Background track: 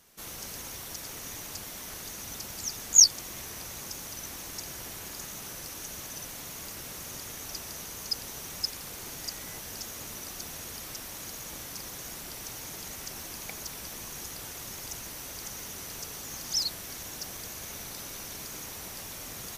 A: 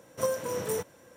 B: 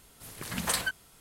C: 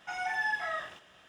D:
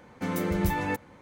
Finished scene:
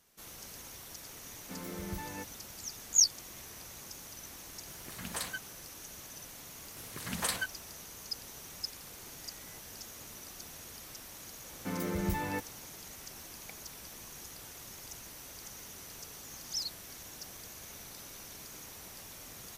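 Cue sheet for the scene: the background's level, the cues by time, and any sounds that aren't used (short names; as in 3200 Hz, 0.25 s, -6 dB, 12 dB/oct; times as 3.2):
background track -7.5 dB
1.28 add D -14 dB
4.47 add B -9 dB
6.55 add B -4 dB + HPF 56 Hz
11.44 add D -6.5 dB
not used: A, C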